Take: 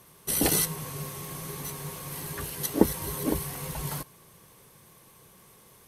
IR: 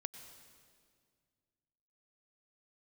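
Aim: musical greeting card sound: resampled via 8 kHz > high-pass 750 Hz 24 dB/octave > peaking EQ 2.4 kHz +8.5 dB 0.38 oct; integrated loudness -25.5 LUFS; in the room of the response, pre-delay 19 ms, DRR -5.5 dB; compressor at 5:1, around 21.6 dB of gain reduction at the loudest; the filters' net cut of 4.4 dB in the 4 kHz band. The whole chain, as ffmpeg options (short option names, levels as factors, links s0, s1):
-filter_complex "[0:a]equalizer=f=4000:t=o:g=-7,acompressor=threshold=0.01:ratio=5,asplit=2[s0][s1];[1:a]atrim=start_sample=2205,adelay=19[s2];[s1][s2]afir=irnorm=-1:irlink=0,volume=2.51[s3];[s0][s3]amix=inputs=2:normalize=0,aresample=8000,aresample=44100,highpass=f=750:w=0.5412,highpass=f=750:w=1.3066,equalizer=f=2400:t=o:w=0.38:g=8.5,volume=10"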